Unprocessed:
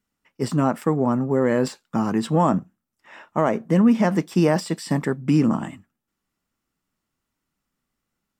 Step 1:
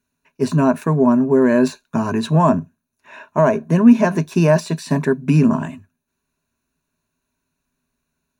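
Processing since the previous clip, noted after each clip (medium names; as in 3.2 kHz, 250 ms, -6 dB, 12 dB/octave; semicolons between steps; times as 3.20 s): rippled EQ curve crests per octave 1.5, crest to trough 13 dB; trim +2.5 dB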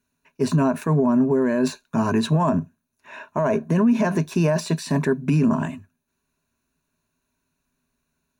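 peak limiter -11.5 dBFS, peak gain reduction 10 dB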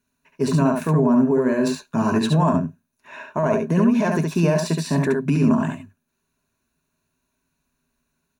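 delay 70 ms -4 dB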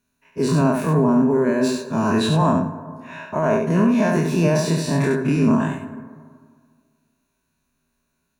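every event in the spectrogram widened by 60 ms; plate-style reverb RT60 1.9 s, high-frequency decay 0.3×, pre-delay 80 ms, DRR 13 dB; trim -2.5 dB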